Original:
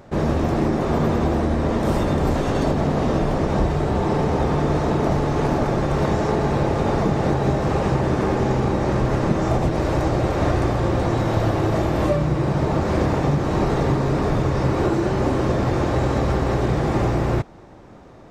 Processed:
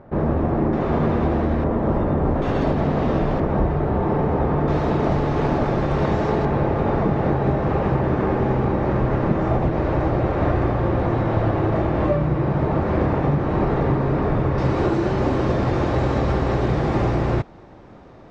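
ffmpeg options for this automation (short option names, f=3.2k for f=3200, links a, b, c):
-af "asetnsamples=n=441:p=0,asendcmd='0.73 lowpass f 2700;1.64 lowpass f 1400;2.42 lowpass f 3200;3.4 lowpass f 1800;4.68 lowpass f 3900;6.45 lowpass f 2300;14.58 lowpass f 4800',lowpass=1.5k"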